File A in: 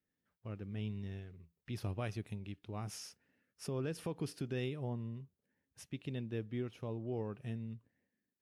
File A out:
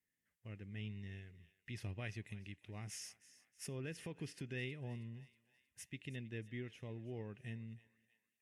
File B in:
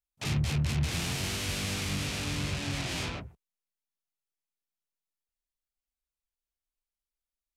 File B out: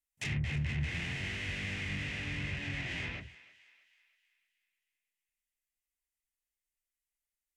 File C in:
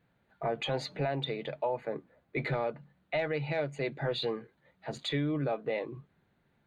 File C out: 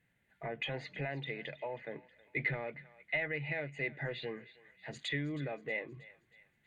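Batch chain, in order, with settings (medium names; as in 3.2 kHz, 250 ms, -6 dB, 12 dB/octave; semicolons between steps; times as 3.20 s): band-stop 2.3 kHz, Q 14; low-pass that closes with the level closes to 2.6 kHz, closed at -30 dBFS; FFT filter 110 Hz 0 dB, 1.3 kHz -6 dB, 2 kHz +12 dB, 4.2 kHz -1 dB, 7.3 kHz +8 dB; thinning echo 318 ms, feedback 51%, high-pass 950 Hz, level -17 dB; trim -5 dB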